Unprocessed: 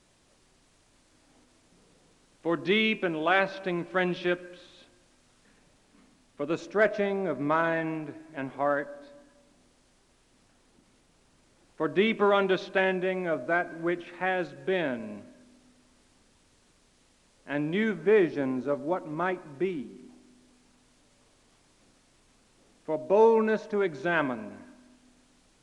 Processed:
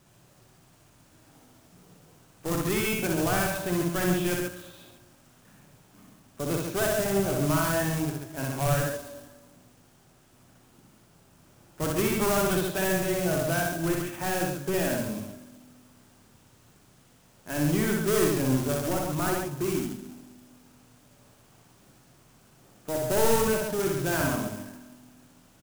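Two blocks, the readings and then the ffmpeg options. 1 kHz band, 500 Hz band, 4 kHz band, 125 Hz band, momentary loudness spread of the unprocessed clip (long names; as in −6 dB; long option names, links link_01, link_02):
−1.0 dB, −1.0 dB, +2.0 dB, +10.0 dB, 14 LU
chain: -filter_complex "[0:a]asplit=2[link_01][link_02];[link_02]highpass=frequency=720:poles=1,volume=23dB,asoftclip=type=tanh:threshold=-10dB[link_03];[link_01][link_03]amix=inputs=2:normalize=0,lowpass=frequency=1100:poles=1,volume=-6dB,acrusher=bits=2:mode=log:mix=0:aa=0.000001,equalizer=frequency=125:width_type=o:width=1:gain=11,equalizer=frequency=250:width_type=o:width=1:gain=-7,equalizer=frequency=500:width_type=o:width=1:gain=-9,equalizer=frequency=1000:width_type=o:width=1:gain=-7,equalizer=frequency=2000:width_type=o:width=1:gain=-9,equalizer=frequency=4000:width_type=o:width=1:gain=-7,asplit=2[link_04][link_05];[link_05]aecho=0:1:61.22|137:0.794|0.562[link_06];[link_04][link_06]amix=inputs=2:normalize=0"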